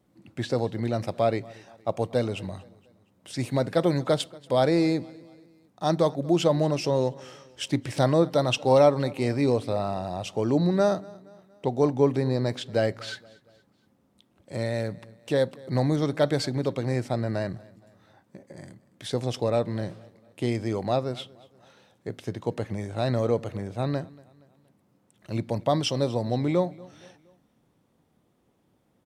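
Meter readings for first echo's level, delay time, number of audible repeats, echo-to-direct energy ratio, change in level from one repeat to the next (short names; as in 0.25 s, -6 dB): -23.0 dB, 0.235 s, 2, -22.0 dB, -6.5 dB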